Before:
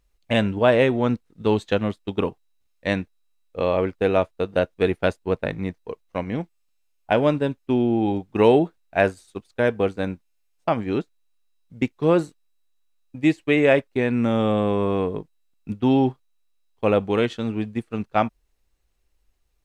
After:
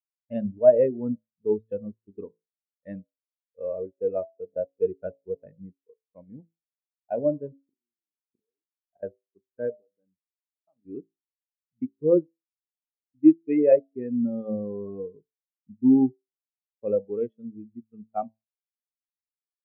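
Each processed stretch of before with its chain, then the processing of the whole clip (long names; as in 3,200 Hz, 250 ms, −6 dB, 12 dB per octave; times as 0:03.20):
0:07.63–0:09.03: gate with flip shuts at −21 dBFS, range −32 dB + double-tracking delay 42 ms −7.5 dB
0:09.75–0:10.85: downward compressor 3 to 1, threshold −35 dBFS + low-shelf EQ 460 Hz −2.5 dB + mains-hum notches 50/100/150/200/250 Hz
whole clip: high-shelf EQ 4,700 Hz −6 dB; hum removal 55.12 Hz, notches 20; every bin expanded away from the loudest bin 2.5 to 1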